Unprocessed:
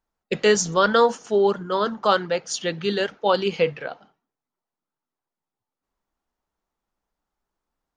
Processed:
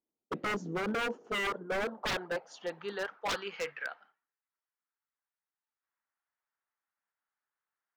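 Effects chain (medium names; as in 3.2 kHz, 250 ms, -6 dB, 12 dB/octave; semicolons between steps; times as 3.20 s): band-pass sweep 320 Hz -> 1.7 kHz, 0.86–3.83 s; wavefolder -27 dBFS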